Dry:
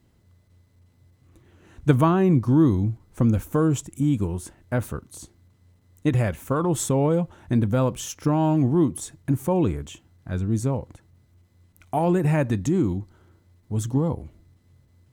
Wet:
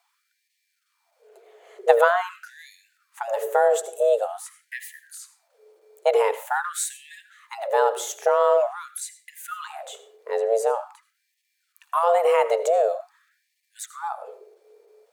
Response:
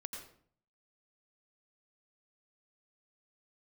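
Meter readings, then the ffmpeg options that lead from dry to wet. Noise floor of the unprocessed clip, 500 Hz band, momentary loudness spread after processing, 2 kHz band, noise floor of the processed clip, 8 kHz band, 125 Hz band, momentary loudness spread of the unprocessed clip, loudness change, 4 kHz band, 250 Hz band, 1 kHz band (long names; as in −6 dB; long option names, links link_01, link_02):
−61 dBFS, +5.5 dB, 20 LU, +7.5 dB, −75 dBFS, +1.5 dB, below −40 dB, 14 LU, +0.5 dB, +2.5 dB, below −35 dB, +6.0 dB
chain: -filter_complex "[0:a]afreqshift=340,asplit=2[link_01][link_02];[1:a]atrim=start_sample=2205,asetrate=48510,aresample=44100[link_03];[link_02][link_03]afir=irnorm=-1:irlink=0,volume=-4dB[link_04];[link_01][link_04]amix=inputs=2:normalize=0,afftfilt=real='re*gte(b*sr/1024,250*pow(1700/250,0.5+0.5*sin(2*PI*0.46*pts/sr)))':imag='im*gte(b*sr/1024,250*pow(1700/250,0.5+0.5*sin(2*PI*0.46*pts/sr)))':win_size=1024:overlap=0.75,volume=-1dB"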